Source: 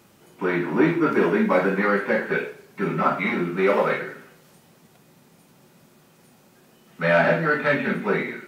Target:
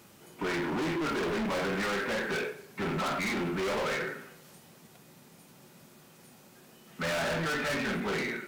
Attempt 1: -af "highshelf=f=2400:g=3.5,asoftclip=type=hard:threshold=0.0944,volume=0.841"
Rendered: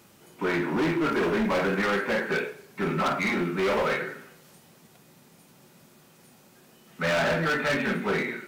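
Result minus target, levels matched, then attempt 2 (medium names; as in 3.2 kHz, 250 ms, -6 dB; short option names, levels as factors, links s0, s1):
hard clipper: distortion -4 dB
-af "highshelf=f=2400:g=3.5,asoftclip=type=hard:threshold=0.0398,volume=0.841"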